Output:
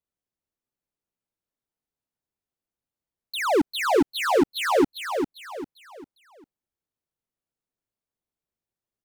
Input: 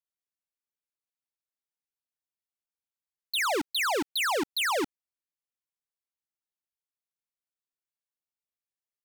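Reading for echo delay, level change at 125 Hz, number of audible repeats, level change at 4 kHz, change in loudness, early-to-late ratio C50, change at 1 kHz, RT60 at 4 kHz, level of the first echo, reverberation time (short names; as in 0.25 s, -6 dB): 0.399 s, +13.0 dB, 4, -1.5 dB, +4.0 dB, none, +5.5 dB, none, -6.0 dB, none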